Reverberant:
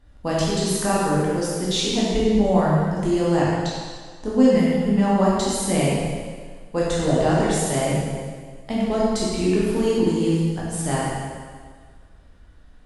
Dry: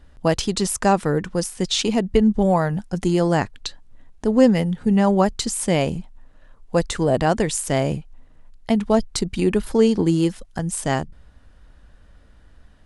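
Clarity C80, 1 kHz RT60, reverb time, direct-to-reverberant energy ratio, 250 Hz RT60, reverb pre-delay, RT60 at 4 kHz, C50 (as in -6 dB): -0.5 dB, 1.7 s, 1.7 s, -7.0 dB, 1.7 s, 5 ms, 1.6 s, -2.5 dB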